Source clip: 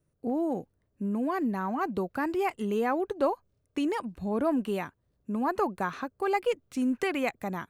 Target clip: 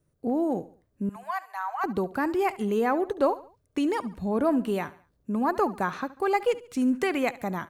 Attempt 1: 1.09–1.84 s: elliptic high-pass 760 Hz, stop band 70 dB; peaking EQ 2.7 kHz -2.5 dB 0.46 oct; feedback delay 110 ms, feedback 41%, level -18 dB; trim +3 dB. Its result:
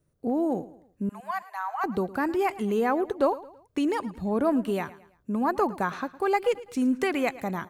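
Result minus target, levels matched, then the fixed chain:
echo 39 ms late
1.09–1.84 s: elliptic high-pass 760 Hz, stop band 70 dB; peaking EQ 2.7 kHz -2.5 dB 0.46 oct; feedback delay 71 ms, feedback 41%, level -18 dB; trim +3 dB

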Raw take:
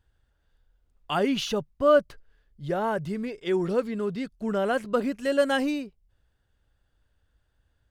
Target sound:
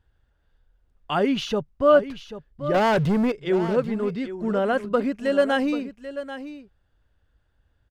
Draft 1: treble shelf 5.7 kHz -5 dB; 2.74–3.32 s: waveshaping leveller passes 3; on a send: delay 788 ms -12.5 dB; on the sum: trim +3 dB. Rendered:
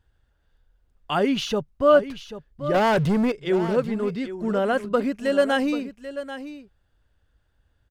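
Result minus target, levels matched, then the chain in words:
8 kHz band +3.5 dB
treble shelf 5.7 kHz -12 dB; 2.74–3.32 s: waveshaping leveller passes 3; on a send: delay 788 ms -12.5 dB; on the sum: trim +3 dB

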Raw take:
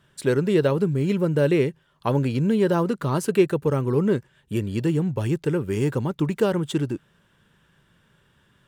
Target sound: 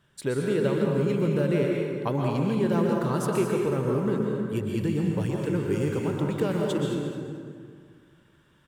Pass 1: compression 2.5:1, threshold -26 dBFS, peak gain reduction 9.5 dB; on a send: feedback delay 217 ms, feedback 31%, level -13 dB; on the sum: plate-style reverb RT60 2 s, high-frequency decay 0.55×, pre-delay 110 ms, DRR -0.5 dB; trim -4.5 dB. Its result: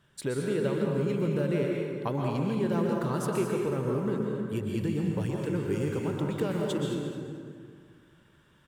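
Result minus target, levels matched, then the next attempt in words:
compression: peak gain reduction +4 dB
compression 2.5:1, threshold -19.5 dBFS, peak gain reduction 5.5 dB; on a send: feedback delay 217 ms, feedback 31%, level -13 dB; on the sum: plate-style reverb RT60 2 s, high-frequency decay 0.55×, pre-delay 110 ms, DRR -0.5 dB; trim -4.5 dB

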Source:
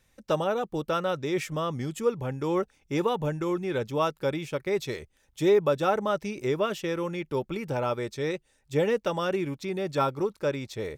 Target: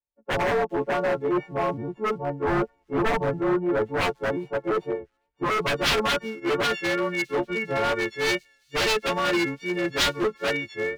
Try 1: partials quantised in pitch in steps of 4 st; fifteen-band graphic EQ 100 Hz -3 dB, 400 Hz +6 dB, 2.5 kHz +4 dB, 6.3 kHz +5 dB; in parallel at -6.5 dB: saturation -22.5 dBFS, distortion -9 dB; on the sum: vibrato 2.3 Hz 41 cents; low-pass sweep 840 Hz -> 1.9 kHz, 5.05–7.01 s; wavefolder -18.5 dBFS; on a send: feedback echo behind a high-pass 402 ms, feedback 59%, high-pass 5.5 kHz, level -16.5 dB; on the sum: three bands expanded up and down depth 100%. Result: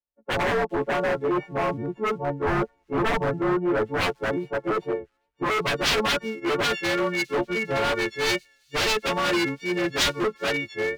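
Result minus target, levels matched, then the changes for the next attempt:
saturation: distortion -6 dB
change: saturation -33.5 dBFS, distortion -3 dB

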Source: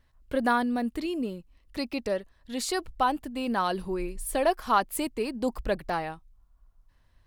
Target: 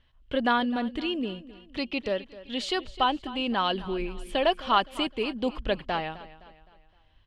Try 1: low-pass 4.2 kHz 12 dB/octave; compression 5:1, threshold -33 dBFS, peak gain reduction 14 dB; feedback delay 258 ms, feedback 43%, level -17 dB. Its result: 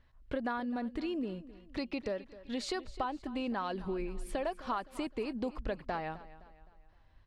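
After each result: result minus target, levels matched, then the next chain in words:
compression: peak gain reduction +14 dB; 4 kHz band -7.0 dB
low-pass 4.2 kHz 12 dB/octave; feedback delay 258 ms, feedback 43%, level -17 dB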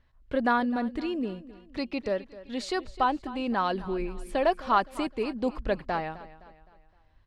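4 kHz band -9.0 dB
low-pass 4.2 kHz 12 dB/octave; peaking EQ 3.1 kHz +14.5 dB 0.46 oct; feedback delay 258 ms, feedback 43%, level -17 dB

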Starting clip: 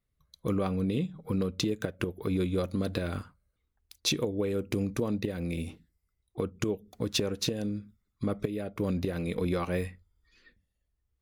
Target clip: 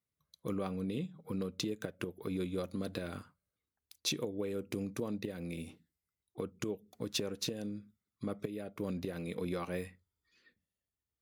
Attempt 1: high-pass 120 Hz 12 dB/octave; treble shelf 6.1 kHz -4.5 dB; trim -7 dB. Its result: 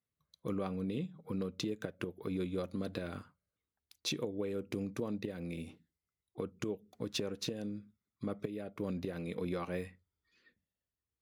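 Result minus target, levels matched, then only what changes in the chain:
8 kHz band -4.0 dB
change: treble shelf 6.1 kHz +3.5 dB

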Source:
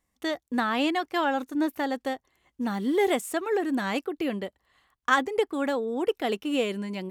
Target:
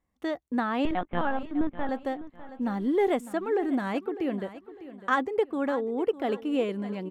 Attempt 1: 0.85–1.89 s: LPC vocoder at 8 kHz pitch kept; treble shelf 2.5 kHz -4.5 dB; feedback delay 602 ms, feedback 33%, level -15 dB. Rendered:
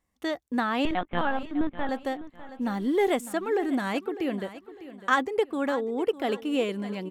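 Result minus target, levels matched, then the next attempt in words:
4 kHz band +5.5 dB
0.85–1.89 s: LPC vocoder at 8 kHz pitch kept; treble shelf 2.5 kHz -14.5 dB; feedback delay 602 ms, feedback 33%, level -15 dB

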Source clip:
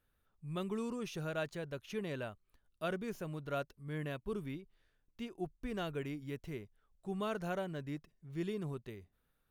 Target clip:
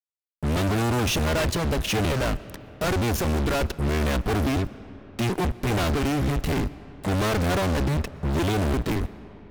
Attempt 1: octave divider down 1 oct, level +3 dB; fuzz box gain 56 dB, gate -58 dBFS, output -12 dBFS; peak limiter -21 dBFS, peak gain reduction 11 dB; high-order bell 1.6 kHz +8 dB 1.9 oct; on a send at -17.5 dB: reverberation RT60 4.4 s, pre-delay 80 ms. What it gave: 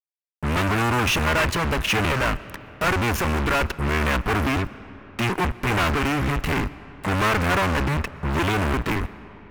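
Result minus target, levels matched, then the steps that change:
2 kHz band +5.5 dB
remove: high-order bell 1.6 kHz +8 dB 1.9 oct

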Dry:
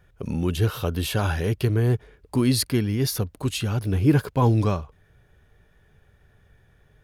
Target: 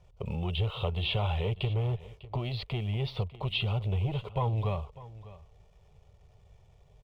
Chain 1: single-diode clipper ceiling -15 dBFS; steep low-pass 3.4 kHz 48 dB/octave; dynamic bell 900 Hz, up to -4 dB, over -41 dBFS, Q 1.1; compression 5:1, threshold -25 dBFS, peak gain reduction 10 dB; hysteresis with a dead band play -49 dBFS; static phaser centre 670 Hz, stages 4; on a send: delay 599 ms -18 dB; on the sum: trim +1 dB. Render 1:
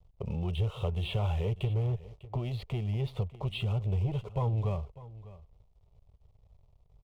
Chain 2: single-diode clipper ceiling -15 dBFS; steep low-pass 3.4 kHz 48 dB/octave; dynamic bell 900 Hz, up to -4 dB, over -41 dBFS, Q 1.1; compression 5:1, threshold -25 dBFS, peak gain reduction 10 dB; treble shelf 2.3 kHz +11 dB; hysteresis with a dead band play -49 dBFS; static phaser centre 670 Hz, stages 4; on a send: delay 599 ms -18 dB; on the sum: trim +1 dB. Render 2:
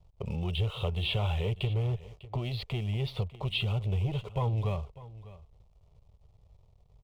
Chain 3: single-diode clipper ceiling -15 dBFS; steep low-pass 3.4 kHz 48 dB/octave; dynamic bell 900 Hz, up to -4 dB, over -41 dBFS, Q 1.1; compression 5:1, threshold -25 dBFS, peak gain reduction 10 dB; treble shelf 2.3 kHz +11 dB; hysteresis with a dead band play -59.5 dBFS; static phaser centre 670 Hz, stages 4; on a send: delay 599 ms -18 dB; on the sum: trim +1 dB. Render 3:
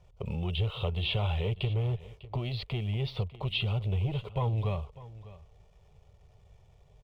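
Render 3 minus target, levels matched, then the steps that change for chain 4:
1 kHz band -3.0 dB
remove: dynamic bell 900 Hz, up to -4 dB, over -41 dBFS, Q 1.1

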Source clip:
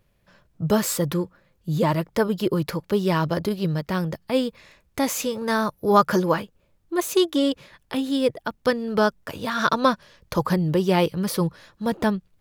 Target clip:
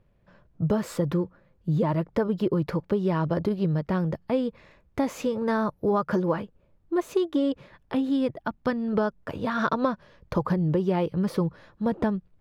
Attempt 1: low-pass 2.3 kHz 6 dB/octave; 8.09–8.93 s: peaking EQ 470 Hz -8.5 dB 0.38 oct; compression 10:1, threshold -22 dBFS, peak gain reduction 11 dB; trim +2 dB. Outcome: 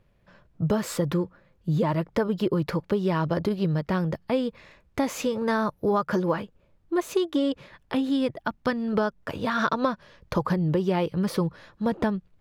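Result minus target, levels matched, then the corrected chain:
2 kHz band +3.0 dB
low-pass 1 kHz 6 dB/octave; 8.09–8.93 s: peaking EQ 470 Hz -8.5 dB 0.38 oct; compression 10:1, threshold -22 dBFS, peak gain reduction 9.5 dB; trim +2 dB

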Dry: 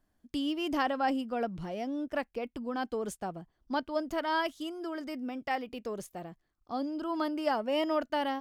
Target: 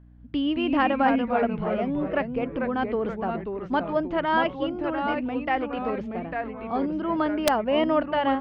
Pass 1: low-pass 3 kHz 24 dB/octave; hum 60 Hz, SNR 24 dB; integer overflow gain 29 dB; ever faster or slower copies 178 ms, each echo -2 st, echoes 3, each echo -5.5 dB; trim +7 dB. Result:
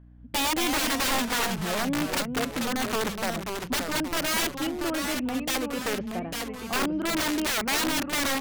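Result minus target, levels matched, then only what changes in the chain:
integer overflow: distortion +32 dB
change: integer overflow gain 17 dB

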